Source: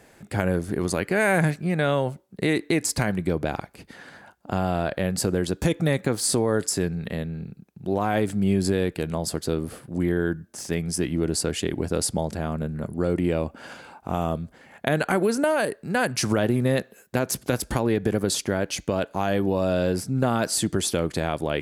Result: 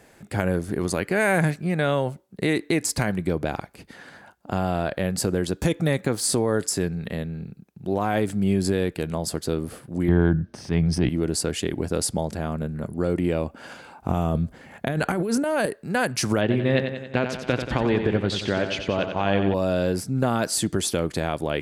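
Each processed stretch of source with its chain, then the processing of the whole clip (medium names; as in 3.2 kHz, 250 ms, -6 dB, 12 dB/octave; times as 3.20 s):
10.08–11.09 s: peaking EQ 92 Hz +10.5 dB 2.8 oct + transient shaper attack -5 dB, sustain +6 dB + Savitzky-Golay filter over 15 samples
13.98–15.66 s: bass shelf 250 Hz +8 dB + compressor with a negative ratio -23 dBFS
16.41–19.54 s: resonant low-pass 3.1 kHz, resonance Q 1.7 + feedback delay 91 ms, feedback 57%, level -7.5 dB
whole clip: none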